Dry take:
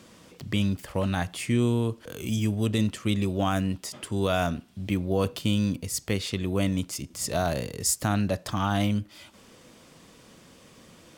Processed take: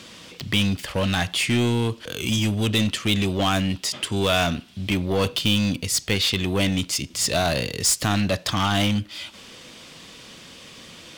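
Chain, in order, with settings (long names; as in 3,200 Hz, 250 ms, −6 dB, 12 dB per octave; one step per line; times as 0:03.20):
parametric band 3,400 Hz +11 dB 1.9 octaves
in parallel at −3 dB: wave folding −22.5 dBFS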